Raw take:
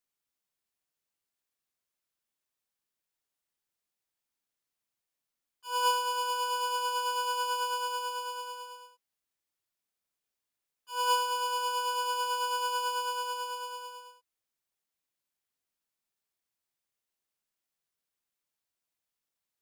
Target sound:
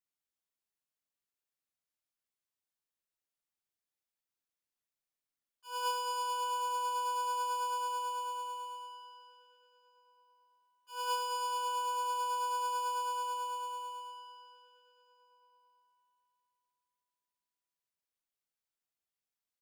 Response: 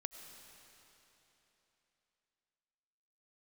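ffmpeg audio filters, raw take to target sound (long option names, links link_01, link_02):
-filter_complex "[0:a]asplit=2[link_01][link_02];[link_02]adelay=1691,volume=-21dB,highshelf=frequency=4000:gain=-38[link_03];[link_01][link_03]amix=inputs=2:normalize=0[link_04];[1:a]atrim=start_sample=2205[link_05];[link_04][link_05]afir=irnorm=-1:irlink=0,volume=-4dB"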